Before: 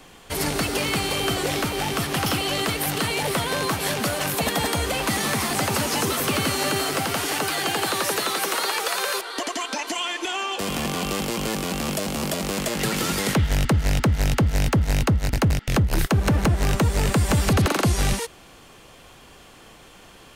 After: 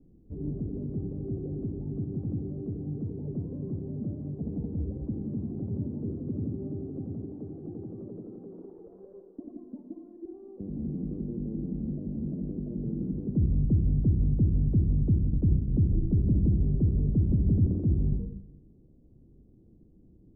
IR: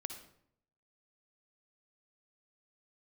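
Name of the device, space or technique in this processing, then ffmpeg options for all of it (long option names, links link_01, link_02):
next room: -filter_complex "[0:a]lowpass=frequency=310:width=0.5412,lowpass=frequency=310:width=1.3066[link_01];[1:a]atrim=start_sample=2205[link_02];[link_01][link_02]afir=irnorm=-1:irlink=0,volume=-1.5dB"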